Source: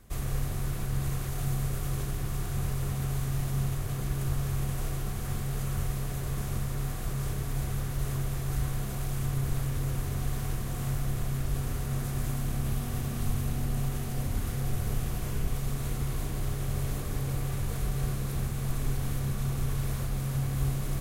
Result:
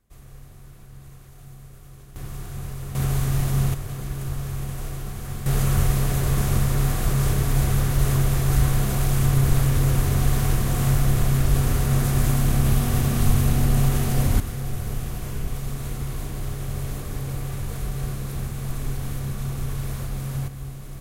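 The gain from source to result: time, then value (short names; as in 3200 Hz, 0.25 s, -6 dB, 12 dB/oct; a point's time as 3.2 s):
-13.5 dB
from 2.16 s -2 dB
from 2.95 s +8 dB
from 3.74 s +1 dB
from 5.46 s +11 dB
from 14.4 s +2 dB
from 20.48 s -6 dB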